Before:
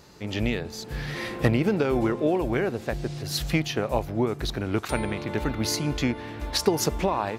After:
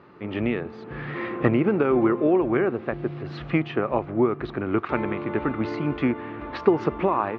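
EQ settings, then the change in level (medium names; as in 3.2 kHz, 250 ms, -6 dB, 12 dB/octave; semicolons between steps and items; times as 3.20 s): cabinet simulation 110–2600 Hz, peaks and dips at 260 Hz +3 dB, 360 Hz +6 dB, 1.2 kHz +9 dB; 0.0 dB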